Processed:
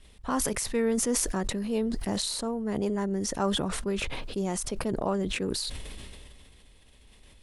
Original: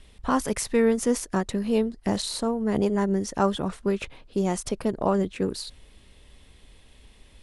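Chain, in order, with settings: high shelf 6600 Hz +4 dB; sustainer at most 23 dB/s; gain -6 dB

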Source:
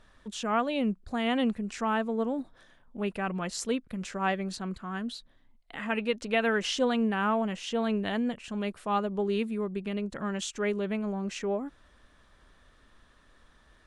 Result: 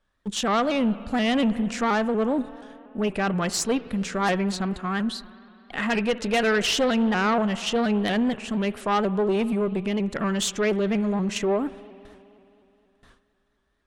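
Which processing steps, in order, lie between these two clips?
gate with hold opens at -47 dBFS; in parallel at -1 dB: level quantiser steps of 19 dB; on the sum: spring tank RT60 3 s, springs 52 ms, chirp 60 ms, DRR 17.5 dB; added harmonics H 5 -14 dB, 6 -20 dB, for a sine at -13 dBFS; shaped vibrato saw up 4.2 Hz, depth 100 cents

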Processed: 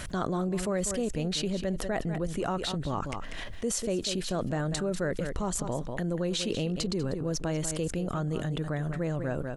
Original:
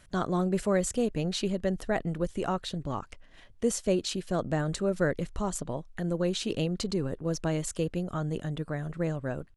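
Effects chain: on a send: echo 0.194 s -14 dB; on the sum: fast leveller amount 70%; gain -5.5 dB

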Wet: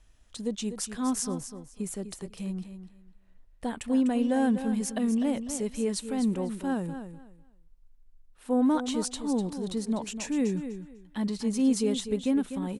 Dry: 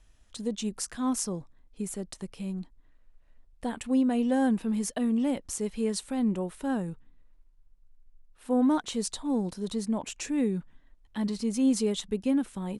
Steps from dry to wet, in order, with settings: feedback echo 0.249 s, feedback 21%, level -10 dB

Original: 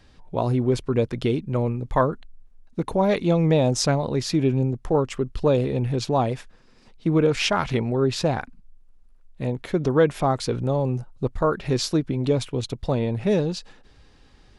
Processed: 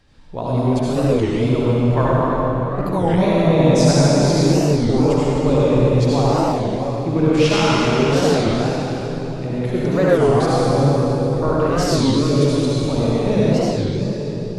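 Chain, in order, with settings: reverb RT60 4.1 s, pre-delay 63 ms, DRR -8.5 dB; record warp 33 1/3 rpm, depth 250 cents; gain -3 dB

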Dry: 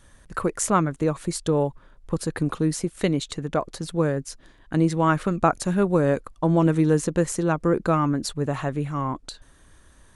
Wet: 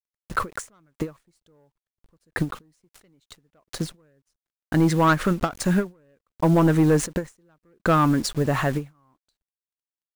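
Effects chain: median filter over 3 samples; dynamic EQ 1700 Hz, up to +4 dB, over -40 dBFS, Q 1.4; sample leveller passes 2; in parallel at -1 dB: limiter -18.5 dBFS, peak gain reduction 13 dB; on the sum: requantised 6-bit, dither none; ending taper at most 250 dB/s; gain -6 dB

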